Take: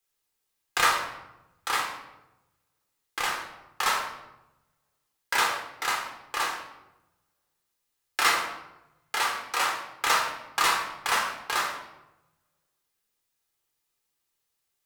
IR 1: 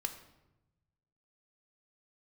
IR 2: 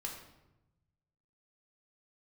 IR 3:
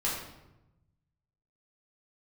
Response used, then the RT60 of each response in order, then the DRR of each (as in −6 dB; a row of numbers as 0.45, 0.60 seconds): 2; 0.95, 0.95, 0.95 seconds; 6.5, −0.5, −7.0 decibels